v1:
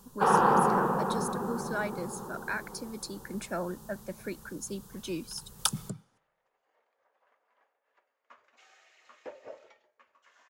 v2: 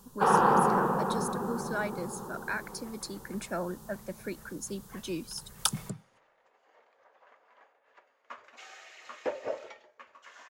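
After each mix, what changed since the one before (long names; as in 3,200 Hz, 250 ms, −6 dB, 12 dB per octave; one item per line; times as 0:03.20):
second sound +11.0 dB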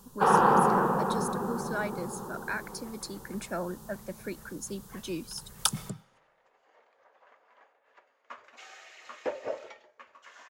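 first sound: send +6.5 dB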